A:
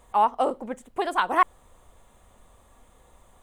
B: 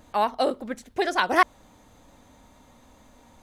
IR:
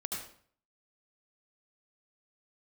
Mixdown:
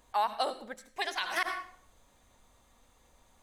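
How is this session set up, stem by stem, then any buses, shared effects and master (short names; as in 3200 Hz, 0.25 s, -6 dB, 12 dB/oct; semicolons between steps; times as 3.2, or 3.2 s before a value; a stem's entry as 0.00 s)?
-10.0 dB, 0.00 s, no send, dry
-3.5 dB, 0.00 s, polarity flipped, send -11 dB, tilt shelf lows -6.5 dB, about 1100 Hz; upward expander 1.5:1, over -37 dBFS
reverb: on, RT60 0.55 s, pre-delay 68 ms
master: limiter -19 dBFS, peak gain reduction 11 dB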